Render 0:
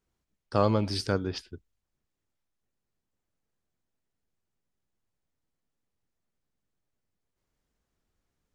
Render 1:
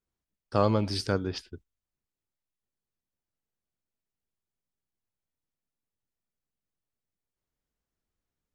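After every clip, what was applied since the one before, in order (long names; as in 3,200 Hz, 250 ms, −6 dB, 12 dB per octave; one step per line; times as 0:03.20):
noise gate −48 dBFS, range −8 dB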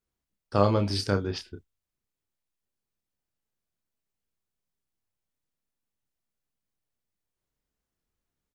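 double-tracking delay 30 ms −7.5 dB
level +1 dB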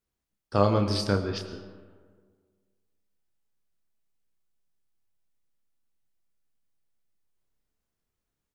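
convolution reverb RT60 1.7 s, pre-delay 65 ms, DRR 10 dB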